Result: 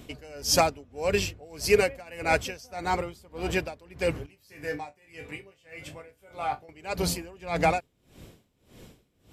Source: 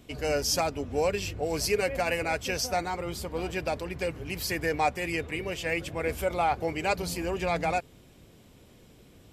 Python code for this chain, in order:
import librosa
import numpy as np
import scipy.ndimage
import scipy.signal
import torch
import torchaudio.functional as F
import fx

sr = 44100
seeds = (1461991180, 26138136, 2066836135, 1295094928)

y = fx.resonator_bank(x, sr, root=43, chord='sus4', decay_s=0.21, at=(4.26, 6.69))
y = y * 10.0 ** (-25 * (0.5 - 0.5 * np.cos(2.0 * np.pi * 1.7 * np.arange(len(y)) / sr)) / 20.0)
y = F.gain(torch.from_numpy(y), 7.0).numpy()